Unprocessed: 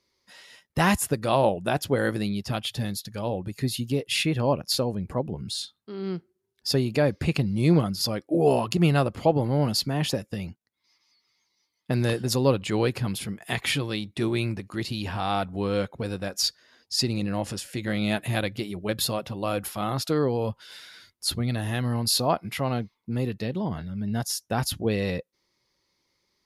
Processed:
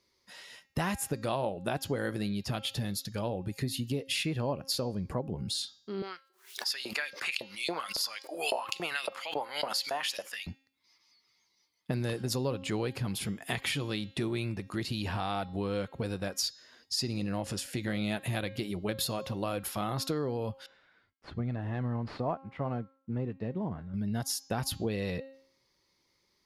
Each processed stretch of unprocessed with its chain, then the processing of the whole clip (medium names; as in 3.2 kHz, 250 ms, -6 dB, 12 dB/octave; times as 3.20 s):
6.02–10.47 s: LFO high-pass saw up 3.6 Hz 570–4100 Hz + swell ahead of each attack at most 140 dB/s
20.66–23.94 s: CVSD coder 64 kbps + low-pass 1.6 kHz + upward expansion, over -43 dBFS
whole clip: de-hum 268.7 Hz, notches 27; compression 4:1, threshold -30 dBFS